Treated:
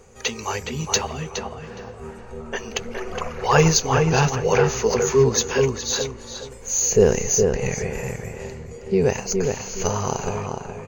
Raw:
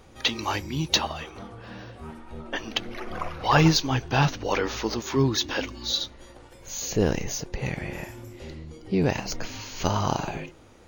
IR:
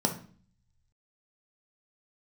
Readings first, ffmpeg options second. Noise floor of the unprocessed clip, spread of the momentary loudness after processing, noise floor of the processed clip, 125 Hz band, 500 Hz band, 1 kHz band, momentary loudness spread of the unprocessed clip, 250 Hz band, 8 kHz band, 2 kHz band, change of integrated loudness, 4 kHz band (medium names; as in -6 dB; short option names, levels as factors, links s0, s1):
-50 dBFS, 17 LU, -39 dBFS, +3.5 dB, +10.0 dB, +3.0 dB, 18 LU, +1.5 dB, +11.5 dB, +2.5 dB, +5.0 dB, -1.0 dB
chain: -filter_complex "[0:a]superequalizer=6b=0.316:7b=2.51:13b=0.501:15b=3.16,dynaudnorm=f=230:g=21:m=1.78,asplit=2[s0][s1];[s1]adelay=416,lowpass=f=2300:p=1,volume=0.631,asplit=2[s2][s3];[s3]adelay=416,lowpass=f=2300:p=1,volume=0.28,asplit=2[s4][s5];[s5]adelay=416,lowpass=f=2300:p=1,volume=0.28,asplit=2[s6][s7];[s7]adelay=416,lowpass=f=2300:p=1,volume=0.28[s8];[s0][s2][s4][s6][s8]amix=inputs=5:normalize=0"